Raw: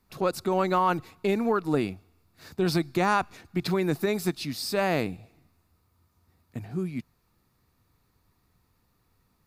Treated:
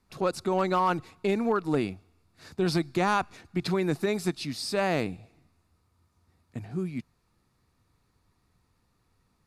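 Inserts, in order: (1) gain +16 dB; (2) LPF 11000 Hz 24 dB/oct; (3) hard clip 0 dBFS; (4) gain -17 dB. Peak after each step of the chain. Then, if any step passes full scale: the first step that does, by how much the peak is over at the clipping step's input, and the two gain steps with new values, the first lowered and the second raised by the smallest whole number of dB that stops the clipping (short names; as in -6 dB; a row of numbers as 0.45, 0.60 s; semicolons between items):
+3.5, +3.5, 0.0, -17.0 dBFS; step 1, 3.5 dB; step 1 +12 dB, step 4 -13 dB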